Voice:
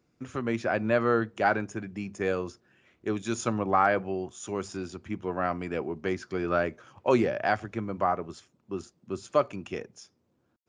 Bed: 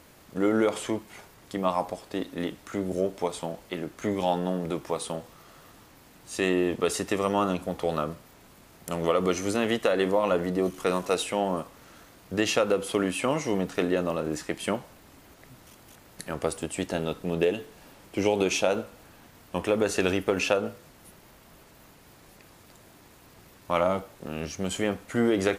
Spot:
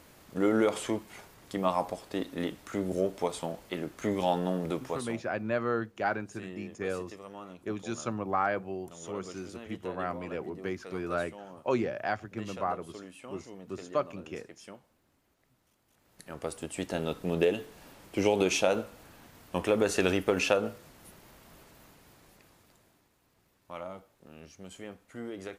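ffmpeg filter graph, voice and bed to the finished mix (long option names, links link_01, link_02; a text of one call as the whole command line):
ffmpeg -i stem1.wav -i stem2.wav -filter_complex "[0:a]adelay=4600,volume=-5.5dB[link_01];[1:a]volume=16.5dB,afade=type=out:start_time=4.73:duration=0.56:silence=0.125893,afade=type=in:start_time=15.88:duration=1.38:silence=0.11885,afade=type=out:start_time=21.59:duration=1.51:silence=0.177828[link_02];[link_01][link_02]amix=inputs=2:normalize=0" out.wav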